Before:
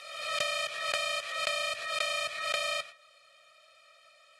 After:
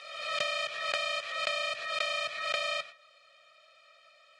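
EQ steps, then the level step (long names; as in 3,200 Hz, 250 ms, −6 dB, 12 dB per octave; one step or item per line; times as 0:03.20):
high-pass filter 110 Hz 12 dB per octave
low-pass filter 5,600 Hz 12 dB per octave
0.0 dB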